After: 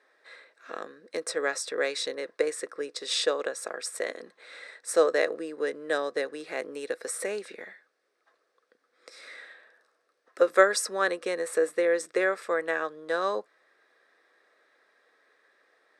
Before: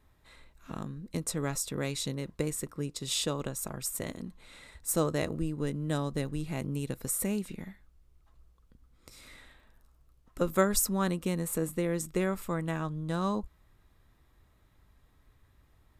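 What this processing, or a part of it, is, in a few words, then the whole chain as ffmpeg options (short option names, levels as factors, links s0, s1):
phone speaker on a table: -af "highpass=f=420:w=0.5412,highpass=f=420:w=1.3066,equalizer=f=490:t=q:w=4:g=6,equalizer=f=930:t=q:w=4:g=-8,equalizer=f=1700:t=q:w=4:g=9,equalizer=f=3000:t=q:w=4:g=-7,equalizer=f=7000:t=q:w=4:g=-10,lowpass=f=7900:w=0.5412,lowpass=f=7900:w=1.3066,volume=2.11"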